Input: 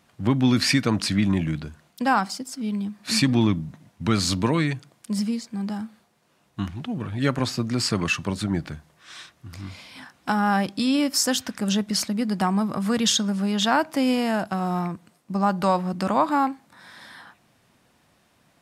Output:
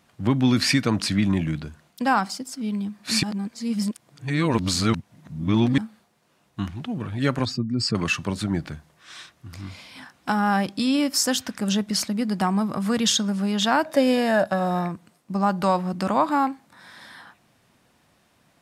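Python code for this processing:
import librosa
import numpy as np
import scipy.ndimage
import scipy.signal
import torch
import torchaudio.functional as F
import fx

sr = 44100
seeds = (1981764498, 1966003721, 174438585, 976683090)

y = fx.spec_expand(x, sr, power=1.7, at=(7.45, 7.95))
y = fx.small_body(y, sr, hz=(580.0, 1700.0, 3700.0), ring_ms=45, db=15, at=(13.85, 14.89))
y = fx.edit(y, sr, fx.reverse_span(start_s=3.23, length_s=2.55), tone=tone)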